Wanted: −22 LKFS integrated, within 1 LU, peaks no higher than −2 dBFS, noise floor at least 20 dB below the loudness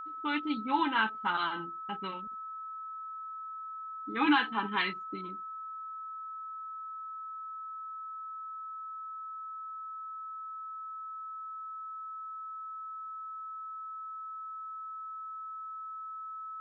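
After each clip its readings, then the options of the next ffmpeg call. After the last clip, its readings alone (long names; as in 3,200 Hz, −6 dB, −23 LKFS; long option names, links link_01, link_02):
interfering tone 1,300 Hz; level of the tone −39 dBFS; integrated loudness −36.5 LKFS; sample peak −15.0 dBFS; target loudness −22.0 LKFS
→ -af "bandreject=frequency=1300:width=30"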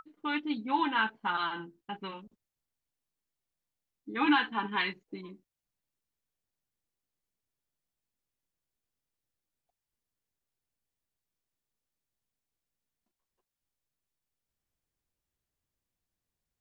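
interfering tone none found; integrated loudness −31.0 LKFS; sample peak −15.5 dBFS; target loudness −22.0 LKFS
→ -af "volume=9dB"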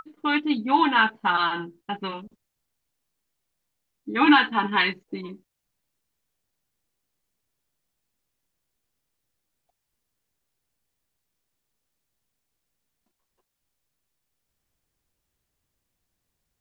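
integrated loudness −22.0 LKFS; sample peak −6.5 dBFS; background noise floor −81 dBFS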